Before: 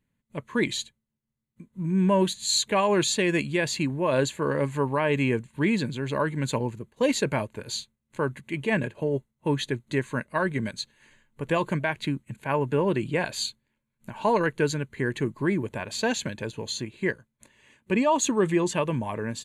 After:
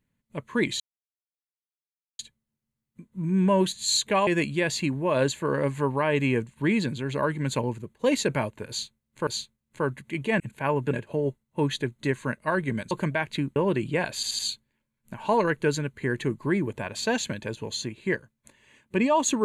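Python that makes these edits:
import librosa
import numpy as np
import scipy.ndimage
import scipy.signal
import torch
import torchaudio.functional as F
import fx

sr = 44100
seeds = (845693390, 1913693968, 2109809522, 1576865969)

y = fx.edit(x, sr, fx.insert_silence(at_s=0.8, length_s=1.39),
    fx.cut(start_s=2.88, length_s=0.36),
    fx.repeat(start_s=7.66, length_s=0.58, count=2),
    fx.cut(start_s=10.79, length_s=0.81),
    fx.move(start_s=12.25, length_s=0.51, to_s=8.79),
    fx.stutter(start_s=13.35, slice_s=0.08, count=4), tone=tone)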